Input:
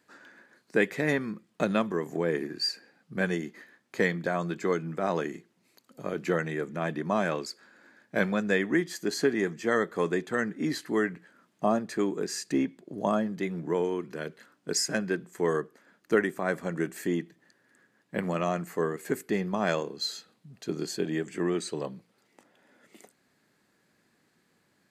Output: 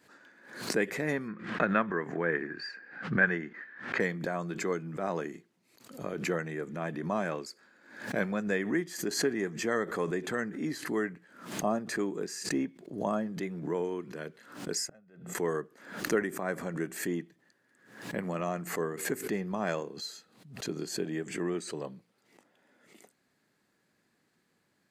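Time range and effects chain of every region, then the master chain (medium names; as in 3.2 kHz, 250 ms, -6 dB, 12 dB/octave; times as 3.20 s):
1.28–4.00 s: low-pass 3.2 kHz + peaking EQ 1.6 kHz +13 dB 0.95 oct
14.87–15.35 s: treble shelf 2.2 kHz -10.5 dB + comb 1.5 ms, depth 59% + inverted gate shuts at -28 dBFS, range -25 dB
whole clip: dynamic bell 3.6 kHz, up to -5 dB, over -49 dBFS, Q 1.8; swell ahead of each attack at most 92 dB/s; trim -4.5 dB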